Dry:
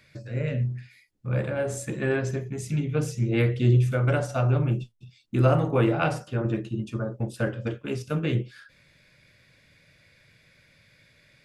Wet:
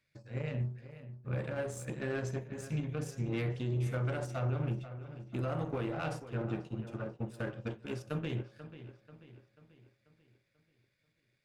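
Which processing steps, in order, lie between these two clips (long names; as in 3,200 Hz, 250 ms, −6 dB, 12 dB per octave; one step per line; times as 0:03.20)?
brickwall limiter −19 dBFS, peak gain reduction 10 dB
power curve on the samples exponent 1.4
delay with a low-pass on its return 488 ms, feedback 48%, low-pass 3,800 Hz, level −13 dB
level −6.5 dB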